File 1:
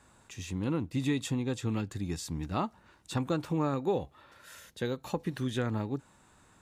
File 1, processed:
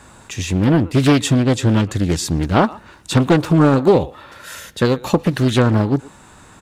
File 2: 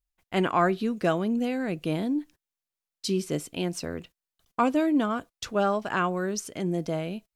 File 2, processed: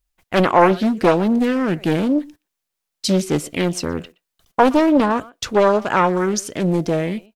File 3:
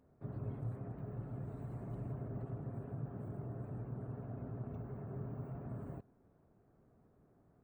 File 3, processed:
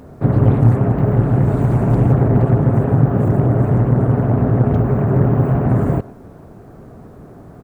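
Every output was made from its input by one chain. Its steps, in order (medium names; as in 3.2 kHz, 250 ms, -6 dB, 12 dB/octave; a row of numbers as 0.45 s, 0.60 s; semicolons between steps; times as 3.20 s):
speakerphone echo 120 ms, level -20 dB; loudspeaker Doppler distortion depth 0.62 ms; peak normalisation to -1.5 dBFS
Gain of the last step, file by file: +17.0 dB, +10.0 dB, +30.0 dB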